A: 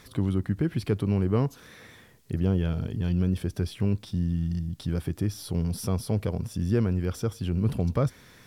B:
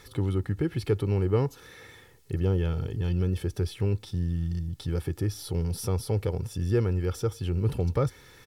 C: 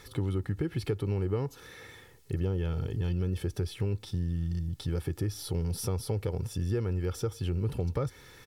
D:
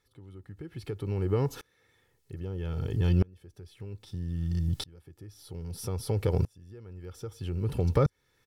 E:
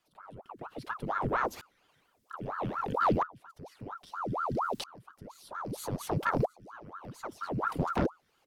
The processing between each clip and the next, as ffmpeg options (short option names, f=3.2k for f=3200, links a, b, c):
-af "aecho=1:1:2.3:0.56,volume=-1dB"
-af "acompressor=threshold=-27dB:ratio=4"
-af "aeval=exprs='val(0)*pow(10,-32*if(lt(mod(-0.62*n/s,1),2*abs(-0.62)/1000),1-mod(-0.62*n/s,1)/(2*abs(-0.62)/1000),(mod(-0.62*n/s,1)-2*abs(-0.62)/1000)/(1-2*abs(-0.62)/1000))/20)':c=same,volume=8.5dB"
-af "afreqshift=-85,aeval=exprs='0.282*(cos(1*acos(clip(val(0)/0.282,-1,1)))-cos(1*PI/2))+0.126*(cos(4*acos(clip(val(0)/0.282,-1,1)))-cos(4*PI/2))+0.0501*(cos(5*acos(clip(val(0)/0.282,-1,1)))-cos(5*PI/2))+0.126*(cos(6*acos(clip(val(0)/0.282,-1,1)))-cos(6*PI/2))+0.0562*(cos(8*acos(clip(val(0)/0.282,-1,1)))-cos(8*PI/2))':c=same,aeval=exprs='val(0)*sin(2*PI*750*n/s+750*0.85/4.3*sin(2*PI*4.3*n/s))':c=same,volume=-4.5dB"